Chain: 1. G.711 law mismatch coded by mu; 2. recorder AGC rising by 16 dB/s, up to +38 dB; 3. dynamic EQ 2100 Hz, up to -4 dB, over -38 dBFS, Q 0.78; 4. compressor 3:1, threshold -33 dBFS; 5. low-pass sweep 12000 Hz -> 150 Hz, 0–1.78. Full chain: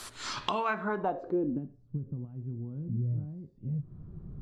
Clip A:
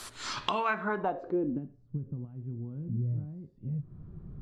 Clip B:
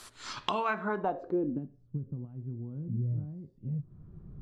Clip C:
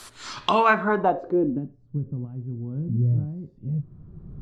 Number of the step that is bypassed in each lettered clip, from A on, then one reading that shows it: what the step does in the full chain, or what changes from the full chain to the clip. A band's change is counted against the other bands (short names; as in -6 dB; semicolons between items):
3, 2 kHz band +2.5 dB; 1, distortion -23 dB; 4, mean gain reduction 6.0 dB